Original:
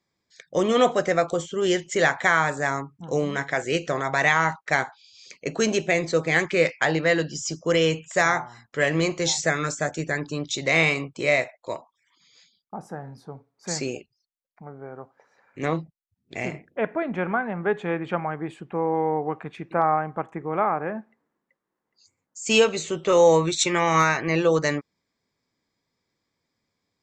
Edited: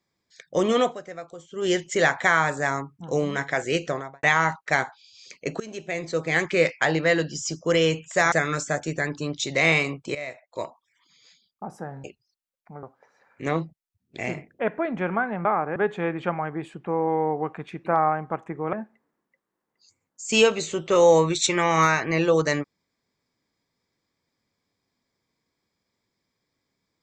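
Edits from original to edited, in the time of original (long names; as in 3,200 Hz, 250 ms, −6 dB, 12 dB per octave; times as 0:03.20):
0:00.73–0:01.73: duck −16 dB, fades 0.26 s
0:03.82–0:04.23: fade out and dull
0:05.60–0:06.53: fade in linear, from −22 dB
0:08.32–0:09.43: remove
0:11.26–0:11.71: fade in quadratic, from −15 dB
0:13.15–0:13.95: remove
0:14.74–0:15.00: remove
0:20.59–0:20.90: move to 0:17.62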